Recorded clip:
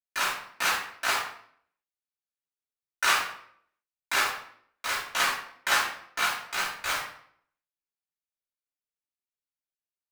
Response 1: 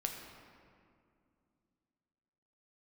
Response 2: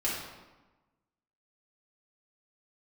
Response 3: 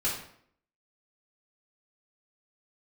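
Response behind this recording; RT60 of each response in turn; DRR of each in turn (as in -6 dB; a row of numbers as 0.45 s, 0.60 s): 3; 2.4 s, 1.2 s, 0.65 s; 2.0 dB, -7.5 dB, -8.5 dB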